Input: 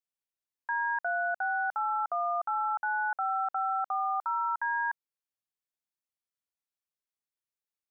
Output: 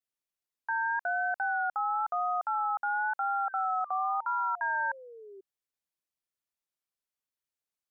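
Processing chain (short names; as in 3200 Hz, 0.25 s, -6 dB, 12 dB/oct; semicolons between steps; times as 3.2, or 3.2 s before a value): vibrato 0.98 Hz 61 cents; painted sound fall, 3.47–5.41, 380–1600 Hz -48 dBFS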